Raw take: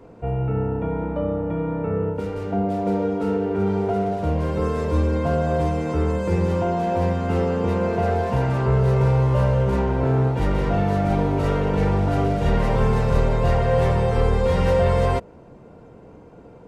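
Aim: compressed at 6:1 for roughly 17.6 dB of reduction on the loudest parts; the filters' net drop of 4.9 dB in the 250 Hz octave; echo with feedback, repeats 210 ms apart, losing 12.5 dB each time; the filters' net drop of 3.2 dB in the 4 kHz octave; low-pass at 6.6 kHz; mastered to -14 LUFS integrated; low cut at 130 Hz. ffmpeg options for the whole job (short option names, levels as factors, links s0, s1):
-af "highpass=130,lowpass=6600,equalizer=f=250:t=o:g=-6.5,equalizer=f=4000:t=o:g=-4,acompressor=threshold=0.0126:ratio=6,aecho=1:1:210|420|630:0.237|0.0569|0.0137,volume=21.1"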